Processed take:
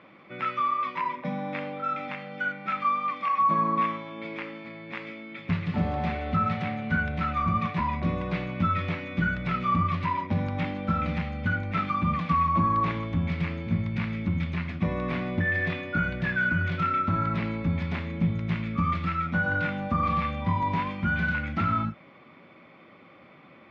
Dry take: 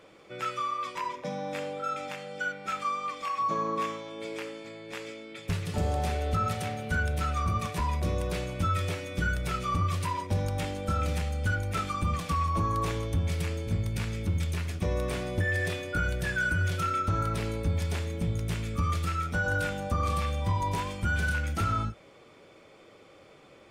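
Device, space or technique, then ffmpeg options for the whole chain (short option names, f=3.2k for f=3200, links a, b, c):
guitar cabinet: -af "highpass=100,equalizer=f=170:t=q:w=4:g=7,equalizer=f=240:t=q:w=4:g=8,equalizer=f=450:t=q:w=4:g=-9,equalizer=f=1.1k:t=q:w=4:g=5,equalizer=f=2.1k:t=q:w=4:g=6,equalizer=f=3.1k:t=q:w=4:g=-3,lowpass=f=3.5k:w=0.5412,lowpass=f=3.5k:w=1.3066,volume=1.5dB"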